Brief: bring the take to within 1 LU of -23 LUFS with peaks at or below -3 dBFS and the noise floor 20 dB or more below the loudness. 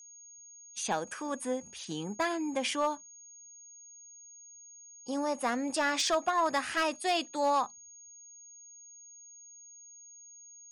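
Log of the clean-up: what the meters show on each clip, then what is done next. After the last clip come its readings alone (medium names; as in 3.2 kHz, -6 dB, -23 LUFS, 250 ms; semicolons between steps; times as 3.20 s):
clipped samples 0.3%; clipping level -21.5 dBFS; steady tone 6.6 kHz; tone level -50 dBFS; loudness -31.5 LUFS; peak level -21.5 dBFS; loudness target -23.0 LUFS
-> clip repair -21.5 dBFS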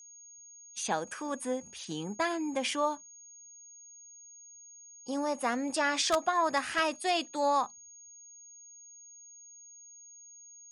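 clipped samples 0.0%; steady tone 6.6 kHz; tone level -50 dBFS
-> band-stop 6.6 kHz, Q 30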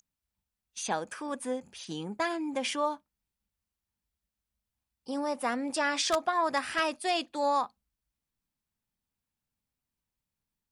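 steady tone not found; loudness -31.5 LUFS; peak level -12.5 dBFS; loudness target -23.0 LUFS
-> trim +8.5 dB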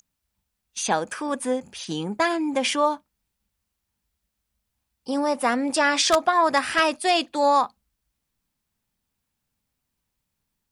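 loudness -23.0 LUFS; peak level -4.0 dBFS; noise floor -80 dBFS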